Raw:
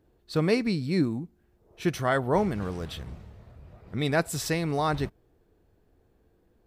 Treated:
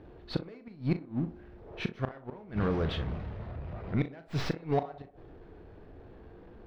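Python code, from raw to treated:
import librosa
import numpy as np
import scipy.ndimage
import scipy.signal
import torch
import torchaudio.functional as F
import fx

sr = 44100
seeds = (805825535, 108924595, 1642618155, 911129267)

p1 = fx.tracing_dist(x, sr, depth_ms=0.084)
p2 = fx.low_shelf(p1, sr, hz=400.0, db=-3.5)
p3 = np.clip(10.0 ** (20.0 / 20.0) * p2, -1.0, 1.0) / 10.0 ** (20.0 / 20.0)
p4 = p2 + (p3 * 10.0 ** (-8.5 / 20.0))
p5 = fx.gate_flip(p4, sr, shuts_db=-17.0, range_db=-39)
p6 = fx.power_curve(p5, sr, exponent=0.7)
p7 = fx.air_absorb(p6, sr, metres=310.0)
p8 = fx.doubler(p7, sr, ms=37.0, db=-11)
y = fx.echo_banded(p8, sr, ms=62, feedback_pct=58, hz=580.0, wet_db=-12)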